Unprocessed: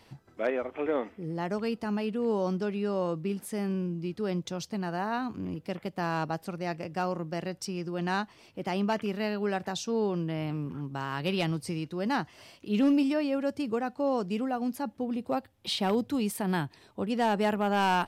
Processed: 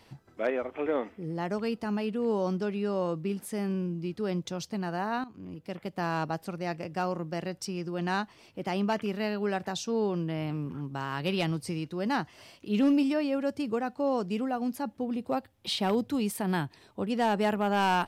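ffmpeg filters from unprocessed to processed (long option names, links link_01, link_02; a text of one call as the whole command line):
ffmpeg -i in.wav -filter_complex "[0:a]asplit=2[link_01][link_02];[link_01]atrim=end=5.24,asetpts=PTS-STARTPTS,afade=type=out:start_time=5.236:duration=0.004:curve=hsin:silence=0.188365[link_03];[link_02]atrim=start=5.24,asetpts=PTS-STARTPTS,afade=type=in:duration=0.74:silence=0.188365[link_04];[link_03][link_04]concat=n=2:v=0:a=1" out.wav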